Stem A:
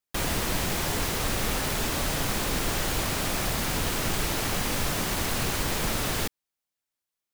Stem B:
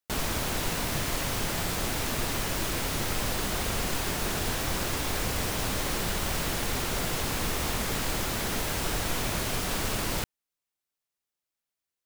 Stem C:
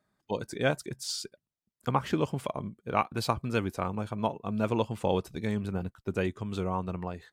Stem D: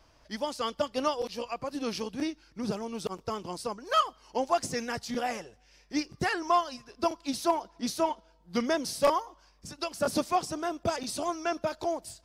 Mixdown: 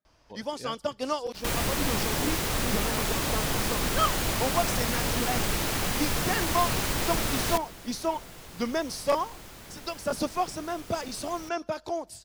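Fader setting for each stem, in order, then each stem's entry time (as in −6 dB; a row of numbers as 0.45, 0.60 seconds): −0.5, −16.0, −14.0, −1.0 decibels; 1.30, 1.25, 0.00, 0.05 seconds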